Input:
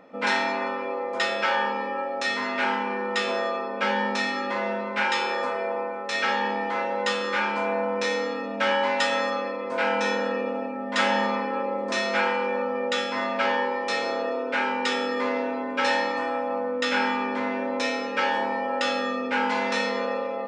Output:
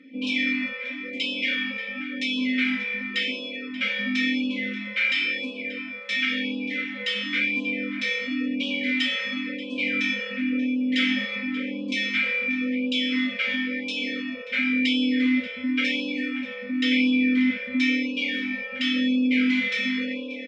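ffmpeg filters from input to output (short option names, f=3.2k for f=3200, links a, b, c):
-filter_complex "[0:a]highshelf=f=2.4k:g=10.5,aecho=1:1:3.9:0.65,asplit=2[a][b];[b]alimiter=limit=-12dB:level=0:latency=1,volume=2dB[c];[a][c]amix=inputs=2:normalize=0,asplit=3[d][e][f];[d]bandpass=f=270:t=q:w=8,volume=0dB[g];[e]bandpass=f=2.29k:t=q:w=8,volume=-6dB[h];[f]bandpass=f=3.01k:t=q:w=8,volume=-9dB[i];[g][h][i]amix=inputs=3:normalize=0,asplit=2[j][k];[k]adelay=583.1,volume=-11dB,highshelf=f=4k:g=-13.1[l];[j][l]amix=inputs=2:normalize=0,afftfilt=real='re*(1-between(b*sr/1024,290*pow(1700/290,0.5+0.5*sin(2*PI*0.95*pts/sr))/1.41,290*pow(1700/290,0.5+0.5*sin(2*PI*0.95*pts/sr))*1.41))':imag='im*(1-between(b*sr/1024,290*pow(1700/290,0.5+0.5*sin(2*PI*0.95*pts/sr))/1.41,290*pow(1700/290,0.5+0.5*sin(2*PI*0.95*pts/sr))*1.41))':win_size=1024:overlap=0.75,volume=2dB"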